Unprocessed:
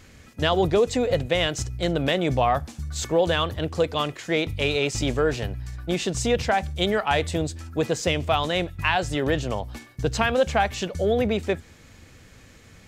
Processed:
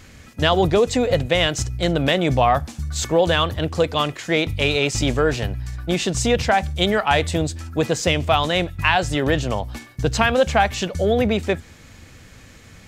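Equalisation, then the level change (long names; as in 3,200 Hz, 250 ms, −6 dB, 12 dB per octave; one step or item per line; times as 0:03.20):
parametric band 420 Hz −2.5 dB 0.77 octaves
+5.0 dB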